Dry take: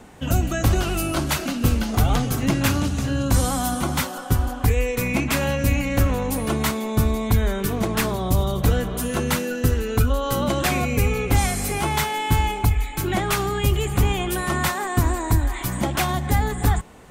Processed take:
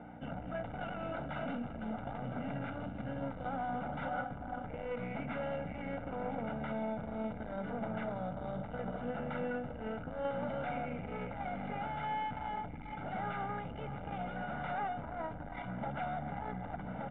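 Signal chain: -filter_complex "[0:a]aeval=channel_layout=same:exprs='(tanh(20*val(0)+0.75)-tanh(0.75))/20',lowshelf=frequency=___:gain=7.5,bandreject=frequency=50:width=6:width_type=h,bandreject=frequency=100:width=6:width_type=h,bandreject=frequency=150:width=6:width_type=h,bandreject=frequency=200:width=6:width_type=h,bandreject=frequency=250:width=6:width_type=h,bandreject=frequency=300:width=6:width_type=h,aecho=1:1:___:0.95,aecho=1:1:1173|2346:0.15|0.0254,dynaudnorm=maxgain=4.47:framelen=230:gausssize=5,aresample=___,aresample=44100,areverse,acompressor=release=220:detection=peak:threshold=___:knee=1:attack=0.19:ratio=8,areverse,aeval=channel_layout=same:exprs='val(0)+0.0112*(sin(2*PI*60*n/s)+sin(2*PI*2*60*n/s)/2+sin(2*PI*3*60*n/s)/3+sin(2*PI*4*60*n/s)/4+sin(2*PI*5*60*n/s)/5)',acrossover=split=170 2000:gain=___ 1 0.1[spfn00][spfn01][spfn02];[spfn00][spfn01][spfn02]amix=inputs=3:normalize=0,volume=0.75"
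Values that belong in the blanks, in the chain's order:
230, 1.4, 8000, 0.0794, 0.0708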